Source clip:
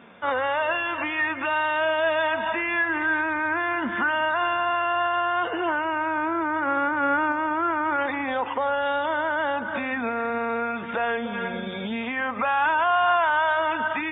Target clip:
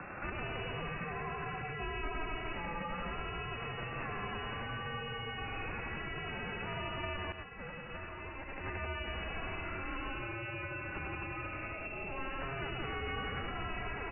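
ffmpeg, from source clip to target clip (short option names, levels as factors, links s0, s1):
-filter_complex "[0:a]acrossover=split=320|1300[s0][s1][s2];[s2]acompressor=mode=upward:threshold=0.02:ratio=2.5[s3];[s0][s1][s3]amix=inputs=3:normalize=0,aeval=exprs='0.251*(cos(1*acos(clip(val(0)/0.251,-1,1)))-cos(1*PI/2))+0.1*(cos(3*acos(clip(val(0)/0.251,-1,1)))-cos(3*PI/2))+0.0224*(cos(7*acos(clip(val(0)/0.251,-1,1)))-cos(7*PI/2))':c=same,aecho=1:1:99.13|174.9|265.3:0.708|0.708|0.708,lowpass=f=2500:t=q:w=0.5098,lowpass=f=2500:t=q:w=0.6013,lowpass=f=2500:t=q:w=0.9,lowpass=f=2500:t=q:w=2.563,afreqshift=-2900,acrossover=split=180|550[s4][s5][s6];[s4]acompressor=threshold=0.00126:ratio=4[s7];[s5]acompressor=threshold=0.00316:ratio=4[s8];[s6]acompressor=threshold=0.01:ratio=4[s9];[s7][s8][s9]amix=inputs=3:normalize=0,aemphasis=mode=reproduction:type=riaa,asettb=1/sr,asplit=3[s10][s11][s12];[s10]atrim=end=7.324[s13];[s11]atrim=start=7.32:end=8.64,asetpts=PTS-STARTPTS,afade=t=in:d=0.004:c=qsin,afade=t=out:st=1.316:d=0.004:c=qsin,agate=range=0.0224:threshold=0.02:ratio=3:detection=peak[s14];[s12]atrim=start=8.636[s15];[s13][s14]acrossfade=d=0.004:c1=hsin:c2=qsin[s16];[s16][s15]acrossfade=d=0.004:c1=qsin:c2=hsin"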